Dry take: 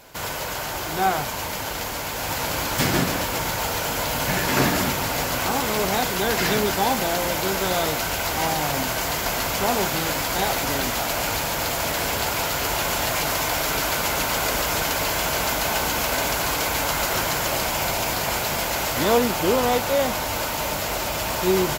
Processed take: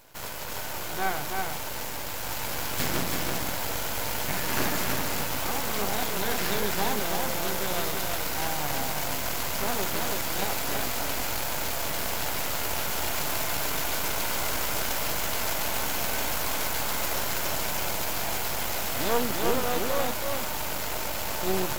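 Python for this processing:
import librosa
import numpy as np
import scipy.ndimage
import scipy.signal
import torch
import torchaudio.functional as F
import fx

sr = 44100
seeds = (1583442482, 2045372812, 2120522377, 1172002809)

p1 = fx.high_shelf(x, sr, hz=12000.0, db=5.5)
p2 = np.maximum(p1, 0.0)
p3 = p2 + fx.echo_single(p2, sr, ms=329, db=-3.5, dry=0)
y = F.gain(torch.from_numpy(p3), -4.0).numpy()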